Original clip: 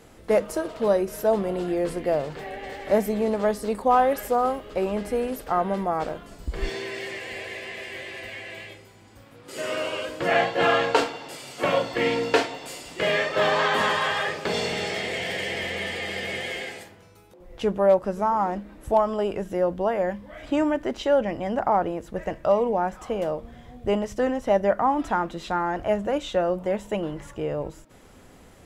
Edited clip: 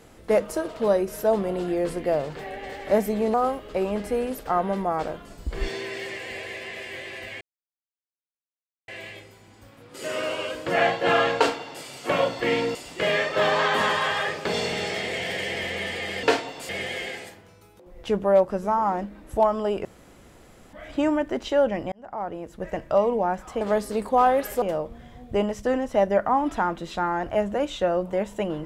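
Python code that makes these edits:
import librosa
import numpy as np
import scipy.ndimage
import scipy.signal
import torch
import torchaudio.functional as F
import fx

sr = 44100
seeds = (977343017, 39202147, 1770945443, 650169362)

y = fx.edit(x, sr, fx.move(start_s=3.34, length_s=1.01, to_s=23.15),
    fx.insert_silence(at_s=8.42, length_s=1.47),
    fx.move(start_s=12.29, length_s=0.46, to_s=16.23),
    fx.room_tone_fill(start_s=19.39, length_s=0.88),
    fx.fade_in_span(start_s=21.46, length_s=0.88), tone=tone)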